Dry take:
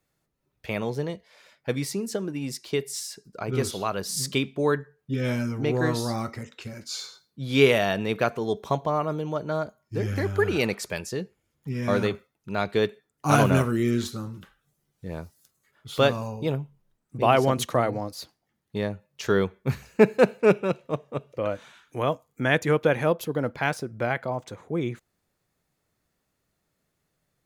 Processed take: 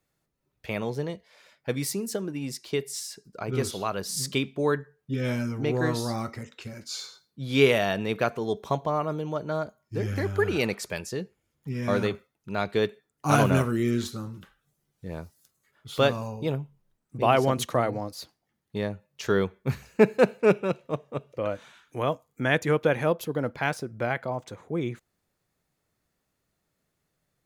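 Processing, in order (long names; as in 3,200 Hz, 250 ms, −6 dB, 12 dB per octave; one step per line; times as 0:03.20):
0:01.79–0:02.20: high-shelf EQ 7,600 Hz → 12,000 Hz +10 dB
level −1.5 dB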